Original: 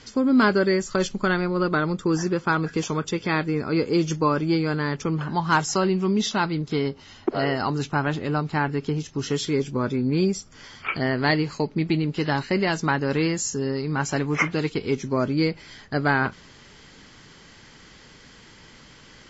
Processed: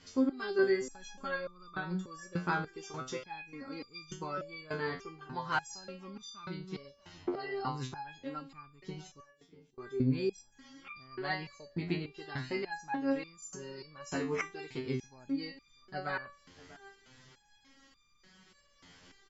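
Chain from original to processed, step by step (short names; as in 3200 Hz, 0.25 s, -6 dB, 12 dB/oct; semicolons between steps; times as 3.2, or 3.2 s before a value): 9.2–9.78 flipped gate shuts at -25 dBFS, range -30 dB; outdoor echo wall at 110 m, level -22 dB; stepped resonator 3.4 Hz 89–1200 Hz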